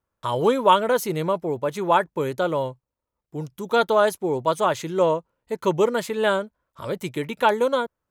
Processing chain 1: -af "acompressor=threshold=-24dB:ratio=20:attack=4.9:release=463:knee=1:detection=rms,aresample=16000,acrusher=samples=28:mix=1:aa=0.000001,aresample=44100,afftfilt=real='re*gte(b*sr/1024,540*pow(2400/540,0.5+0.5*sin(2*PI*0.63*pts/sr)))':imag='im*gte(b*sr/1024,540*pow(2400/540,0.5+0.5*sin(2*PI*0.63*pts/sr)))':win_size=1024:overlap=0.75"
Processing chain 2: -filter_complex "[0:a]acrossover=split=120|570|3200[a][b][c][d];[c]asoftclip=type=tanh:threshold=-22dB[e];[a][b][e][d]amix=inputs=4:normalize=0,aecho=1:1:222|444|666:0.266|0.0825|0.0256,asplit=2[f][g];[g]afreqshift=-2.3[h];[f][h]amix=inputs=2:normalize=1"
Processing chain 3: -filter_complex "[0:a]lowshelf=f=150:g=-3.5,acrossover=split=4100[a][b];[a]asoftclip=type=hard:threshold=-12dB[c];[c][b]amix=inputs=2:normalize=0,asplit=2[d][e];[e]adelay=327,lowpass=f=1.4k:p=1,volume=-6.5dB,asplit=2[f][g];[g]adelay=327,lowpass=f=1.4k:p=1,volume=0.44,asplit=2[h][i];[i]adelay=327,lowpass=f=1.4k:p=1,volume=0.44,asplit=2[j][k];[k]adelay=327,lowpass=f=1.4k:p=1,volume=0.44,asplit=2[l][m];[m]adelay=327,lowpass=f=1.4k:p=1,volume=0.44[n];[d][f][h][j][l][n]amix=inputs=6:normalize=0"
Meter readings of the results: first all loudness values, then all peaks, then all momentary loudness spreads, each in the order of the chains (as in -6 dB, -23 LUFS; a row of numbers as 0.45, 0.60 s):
-43.0, -27.5, -23.0 LUFS; -21.5, -11.0, -8.5 dBFS; 8, 11, 10 LU